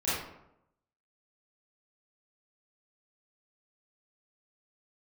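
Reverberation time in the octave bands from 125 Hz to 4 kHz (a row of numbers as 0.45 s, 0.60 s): 0.90 s, 0.90 s, 0.85 s, 0.80 s, 0.65 s, 0.45 s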